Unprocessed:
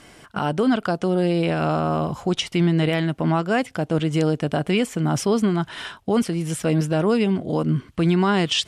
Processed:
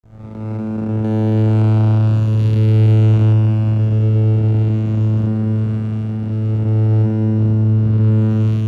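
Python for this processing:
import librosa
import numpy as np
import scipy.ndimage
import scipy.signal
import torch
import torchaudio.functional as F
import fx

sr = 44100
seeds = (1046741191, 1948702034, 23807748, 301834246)

y = fx.spec_blur(x, sr, span_ms=562.0)
y = fx.vocoder(y, sr, bands=8, carrier='saw', carrier_hz=109.0)
y = fx.high_shelf(y, sr, hz=2200.0, db=10.5, at=(1.04, 3.33))
y = fx.echo_heads(y, sr, ms=229, heads='first and second', feedback_pct=70, wet_db=-12.5)
y = fx.backlash(y, sr, play_db=-36.0)
y = F.gain(torch.from_numpy(y), 7.5).numpy()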